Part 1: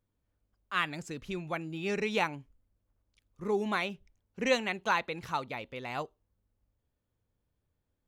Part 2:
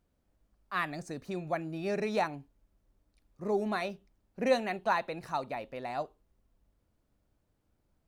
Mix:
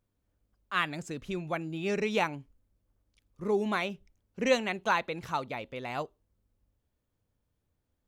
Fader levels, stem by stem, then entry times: +0.5 dB, -12.5 dB; 0.00 s, 0.00 s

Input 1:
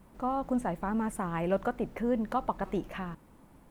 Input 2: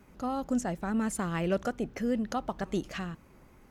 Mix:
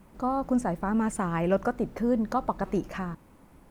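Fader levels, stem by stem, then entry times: +1.5 dB, -6.0 dB; 0.00 s, 0.00 s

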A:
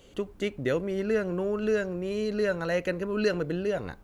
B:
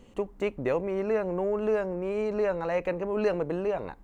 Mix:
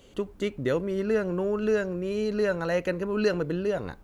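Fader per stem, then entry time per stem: 0.0 dB, -11.0 dB; 0.00 s, 0.00 s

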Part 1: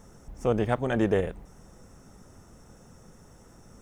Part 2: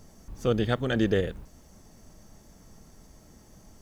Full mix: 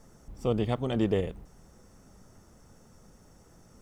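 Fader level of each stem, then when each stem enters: -5.0 dB, -9.5 dB; 0.00 s, 0.00 s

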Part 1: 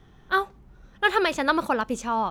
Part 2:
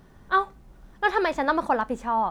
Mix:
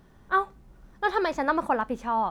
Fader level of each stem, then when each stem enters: -14.5 dB, -3.5 dB; 0.00 s, 0.00 s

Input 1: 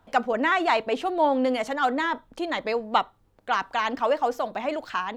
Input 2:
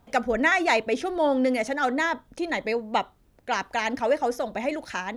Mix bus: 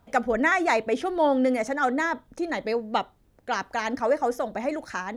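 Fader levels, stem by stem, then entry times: -8.0 dB, -2.5 dB; 0.00 s, 0.00 s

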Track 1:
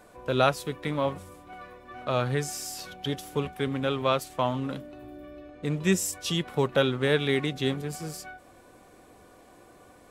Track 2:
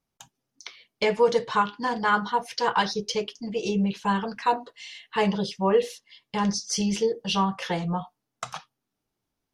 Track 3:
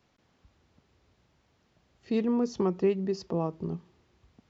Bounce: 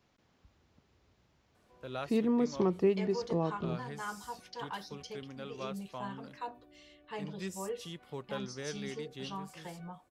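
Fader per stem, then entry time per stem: -17.0 dB, -18.0 dB, -2.0 dB; 1.55 s, 1.95 s, 0.00 s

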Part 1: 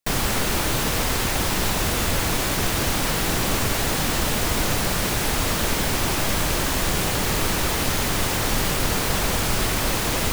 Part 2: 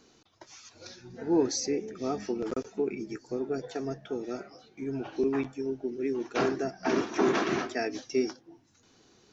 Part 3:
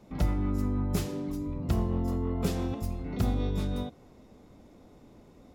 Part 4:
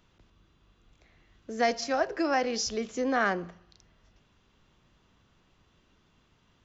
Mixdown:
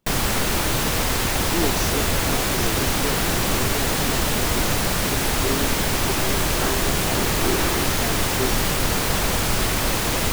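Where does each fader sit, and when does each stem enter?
+1.0 dB, -0.5 dB, -19.5 dB, -10.5 dB; 0.00 s, 0.25 s, 0.00 s, 0.00 s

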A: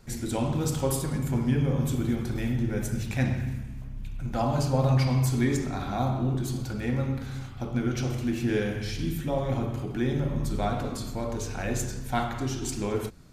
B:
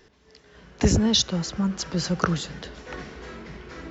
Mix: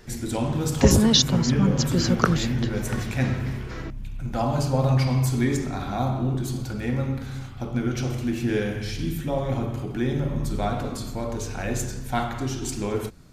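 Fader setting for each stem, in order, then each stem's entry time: +2.0 dB, +2.5 dB; 0.00 s, 0.00 s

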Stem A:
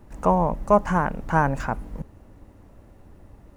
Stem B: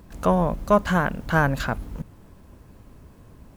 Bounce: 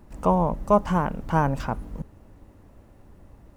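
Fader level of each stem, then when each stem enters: -2.0 dB, -13.0 dB; 0.00 s, 0.00 s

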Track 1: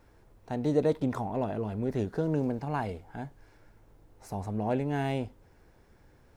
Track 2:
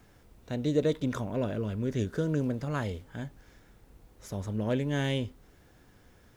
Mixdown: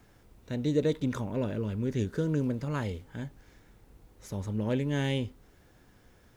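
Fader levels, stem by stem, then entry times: -13.5 dB, -1.0 dB; 0.00 s, 0.00 s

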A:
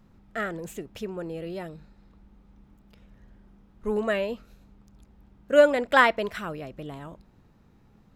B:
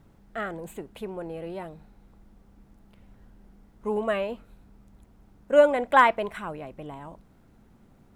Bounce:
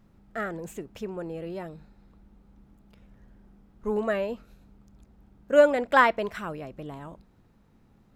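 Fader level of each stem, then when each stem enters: -3.5 dB, -9.5 dB; 0.00 s, 0.00 s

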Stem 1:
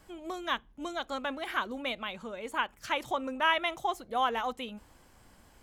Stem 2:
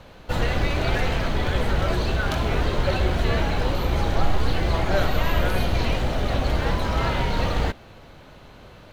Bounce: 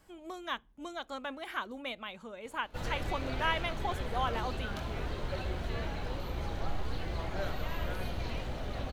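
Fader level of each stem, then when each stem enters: -5.0 dB, -14.0 dB; 0.00 s, 2.45 s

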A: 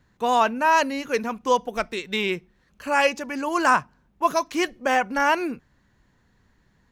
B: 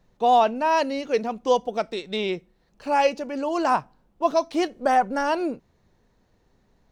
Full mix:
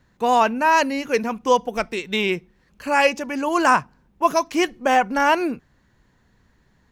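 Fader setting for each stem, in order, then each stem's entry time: +2.0 dB, -7.0 dB; 0.00 s, 0.00 s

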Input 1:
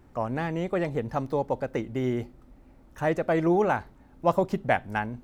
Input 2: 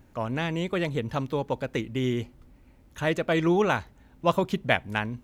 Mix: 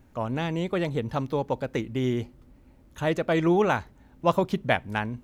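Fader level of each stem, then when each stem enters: -9.0 dB, -2.0 dB; 0.00 s, 0.00 s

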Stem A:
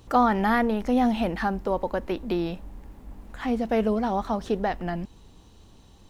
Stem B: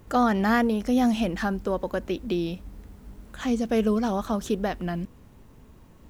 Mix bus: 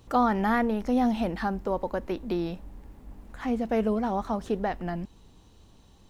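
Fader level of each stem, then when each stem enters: -3.5 dB, -17.5 dB; 0.00 s, 0.00 s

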